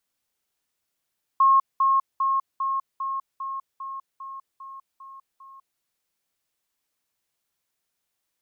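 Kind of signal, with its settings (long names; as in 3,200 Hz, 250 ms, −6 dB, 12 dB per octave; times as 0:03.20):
level staircase 1,080 Hz −13.5 dBFS, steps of −3 dB, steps 11, 0.20 s 0.20 s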